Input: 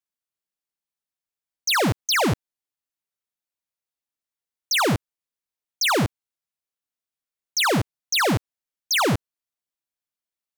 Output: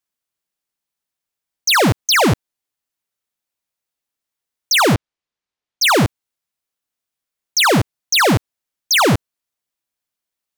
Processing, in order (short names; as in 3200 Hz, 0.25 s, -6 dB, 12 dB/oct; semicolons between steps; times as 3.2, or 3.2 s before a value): 4.95–5.82 LPF 5000 Hz; gain +7 dB